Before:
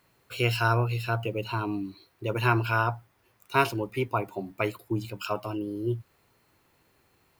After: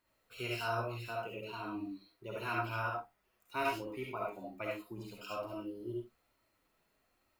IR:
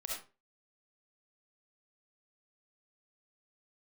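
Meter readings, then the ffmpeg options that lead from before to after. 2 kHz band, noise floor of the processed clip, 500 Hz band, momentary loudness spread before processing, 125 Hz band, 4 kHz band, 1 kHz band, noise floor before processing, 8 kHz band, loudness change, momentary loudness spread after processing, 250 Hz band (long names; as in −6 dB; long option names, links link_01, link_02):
−10.5 dB, −77 dBFS, −9.5 dB, 11 LU, −17.0 dB, −10.0 dB, −9.5 dB, −67 dBFS, −10.0 dB, −11.0 dB, 11 LU, −11.0 dB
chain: -filter_complex "[0:a]flanger=delay=3.1:depth=2:regen=-23:speed=1.1:shape=triangular[link_01];[1:a]atrim=start_sample=2205,atrim=end_sample=6615[link_02];[link_01][link_02]afir=irnorm=-1:irlink=0,volume=-6.5dB"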